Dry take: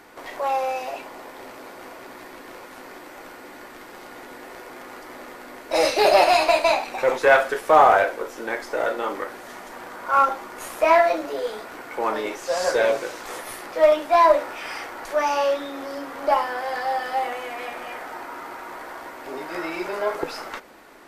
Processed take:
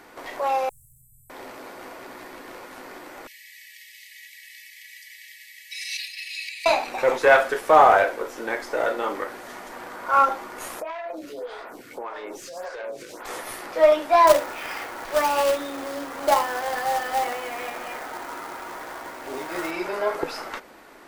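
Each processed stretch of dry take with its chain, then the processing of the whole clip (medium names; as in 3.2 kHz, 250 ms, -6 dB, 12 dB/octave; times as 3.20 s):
0.69–1.30 s: bass shelf 400 Hz +7.5 dB + overload inside the chain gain 30.5 dB + Chebyshev band-stop 140–8000 Hz, order 5
3.27–6.66 s: comb 3.1 ms, depth 91% + compression 16:1, threshold -21 dBFS + brick-wall FIR high-pass 1.7 kHz
10.80–13.25 s: self-modulated delay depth 0.12 ms + compression 16:1, threshold -28 dBFS + lamp-driven phase shifter 1.7 Hz
14.27–19.71 s: low-pass 4.4 kHz + companded quantiser 4-bit
whole clip: none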